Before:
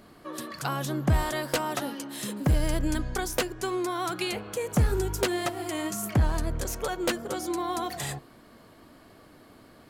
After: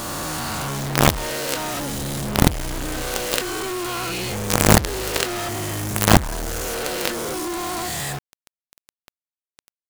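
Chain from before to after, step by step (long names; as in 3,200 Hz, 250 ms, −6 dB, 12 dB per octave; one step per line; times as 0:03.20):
peak hold with a rise ahead of every peak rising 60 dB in 2.22 s
log-companded quantiser 2 bits
level −1 dB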